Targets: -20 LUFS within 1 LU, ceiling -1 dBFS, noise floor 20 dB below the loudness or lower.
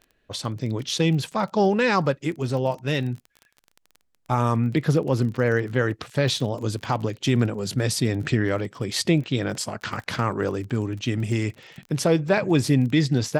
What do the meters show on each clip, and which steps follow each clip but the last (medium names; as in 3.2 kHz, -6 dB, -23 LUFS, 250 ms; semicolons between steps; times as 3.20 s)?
tick rate 28 per s; loudness -24.0 LUFS; peak level -8.5 dBFS; loudness target -20.0 LUFS
-> de-click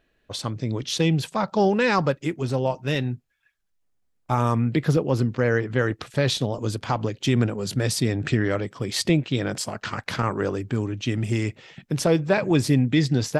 tick rate 0 per s; loudness -24.0 LUFS; peak level -8.5 dBFS; loudness target -20.0 LUFS
-> trim +4 dB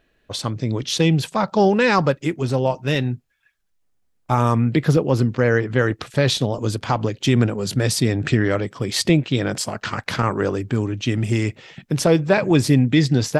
loudness -20.0 LUFS; peak level -4.5 dBFS; noise floor -65 dBFS